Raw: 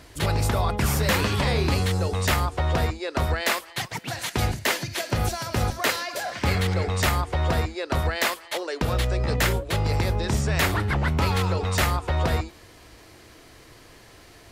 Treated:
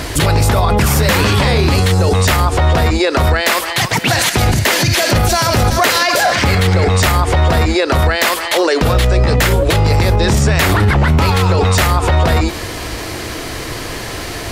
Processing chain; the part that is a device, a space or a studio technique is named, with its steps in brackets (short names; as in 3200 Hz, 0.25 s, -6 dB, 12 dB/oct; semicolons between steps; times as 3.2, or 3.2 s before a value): loud club master (compressor 2:1, threshold -25 dBFS, peak gain reduction 5 dB; hard clip -17 dBFS, distortion -30 dB; maximiser +28.5 dB); gain -3.5 dB